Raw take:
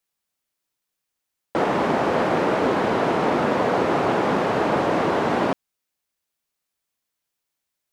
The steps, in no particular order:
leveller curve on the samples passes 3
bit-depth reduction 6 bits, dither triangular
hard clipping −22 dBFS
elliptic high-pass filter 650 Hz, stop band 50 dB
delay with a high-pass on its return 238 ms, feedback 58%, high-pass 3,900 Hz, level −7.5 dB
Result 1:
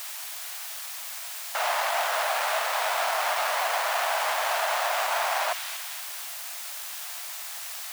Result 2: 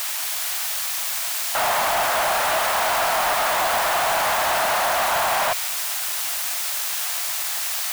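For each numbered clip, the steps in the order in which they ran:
delay with a high-pass on its return, then hard clipping, then leveller curve on the samples, then bit-depth reduction, then elliptic high-pass filter
hard clipping, then bit-depth reduction, then elliptic high-pass filter, then leveller curve on the samples, then delay with a high-pass on its return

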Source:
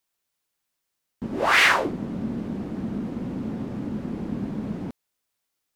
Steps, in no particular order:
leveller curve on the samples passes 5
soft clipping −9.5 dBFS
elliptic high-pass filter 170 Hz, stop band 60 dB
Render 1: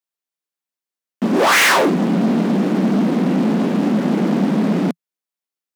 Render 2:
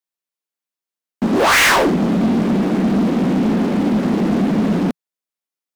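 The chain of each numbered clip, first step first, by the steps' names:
leveller curve on the samples, then soft clipping, then elliptic high-pass filter
elliptic high-pass filter, then leveller curve on the samples, then soft clipping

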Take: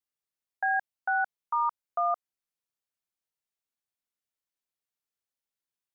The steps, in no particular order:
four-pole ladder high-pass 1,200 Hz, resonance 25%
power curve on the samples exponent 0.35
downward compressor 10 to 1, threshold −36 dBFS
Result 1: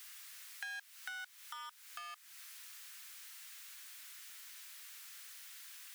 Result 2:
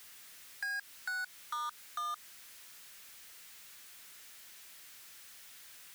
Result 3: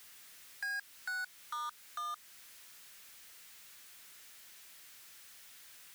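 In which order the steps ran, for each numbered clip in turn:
power curve on the samples, then downward compressor, then four-pole ladder high-pass
four-pole ladder high-pass, then power curve on the samples, then downward compressor
downward compressor, then four-pole ladder high-pass, then power curve on the samples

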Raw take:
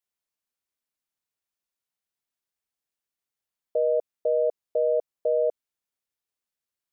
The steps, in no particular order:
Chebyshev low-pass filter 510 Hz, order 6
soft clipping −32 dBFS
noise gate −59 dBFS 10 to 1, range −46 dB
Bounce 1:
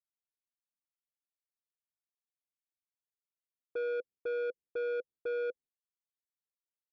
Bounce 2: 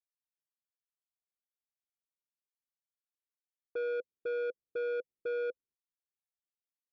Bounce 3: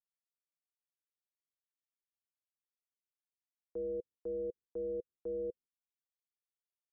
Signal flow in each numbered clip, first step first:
Chebyshev low-pass filter, then soft clipping, then noise gate
Chebyshev low-pass filter, then noise gate, then soft clipping
soft clipping, then Chebyshev low-pass filter, then noise gate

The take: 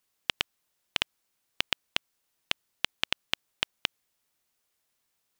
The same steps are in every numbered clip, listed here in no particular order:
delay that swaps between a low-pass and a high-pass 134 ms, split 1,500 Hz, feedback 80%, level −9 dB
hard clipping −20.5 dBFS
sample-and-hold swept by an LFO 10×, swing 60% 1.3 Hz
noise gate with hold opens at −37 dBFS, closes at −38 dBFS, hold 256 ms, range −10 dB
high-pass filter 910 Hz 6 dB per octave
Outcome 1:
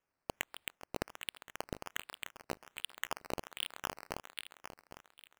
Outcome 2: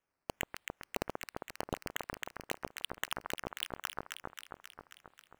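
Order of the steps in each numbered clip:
noise gate with hold, then delay that swaps between a low-pass and a high-pass, then hard clipping, then high-pass filter, then sample-and-hold swept by an LFO
high-pass filter, then sample-and-hold swept by an LFO, then delay that swaps between a low-pass and a high-pass, then noise gate with hold, then hard clipping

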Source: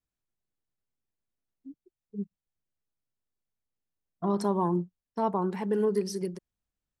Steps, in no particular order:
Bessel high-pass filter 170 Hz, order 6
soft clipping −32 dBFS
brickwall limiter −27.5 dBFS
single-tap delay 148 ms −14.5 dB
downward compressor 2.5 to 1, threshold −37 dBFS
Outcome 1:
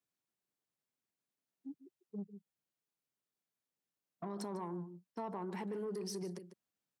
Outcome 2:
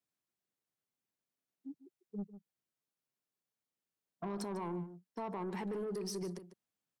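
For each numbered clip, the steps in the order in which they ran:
brickwall limiter, then single-tap delay, then downward compressor, then soft clipping, then Bessel high-pass filter
Bessel high-pass filter, then brickwall limiter, then soft clipping, then single-tap delay, then downward compressor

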